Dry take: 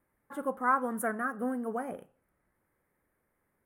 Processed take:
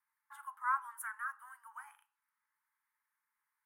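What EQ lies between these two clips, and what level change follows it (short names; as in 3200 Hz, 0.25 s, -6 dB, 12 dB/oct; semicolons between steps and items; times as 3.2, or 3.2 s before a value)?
Chebyshev high-pass 860 Hz, order 8; -5.5 dB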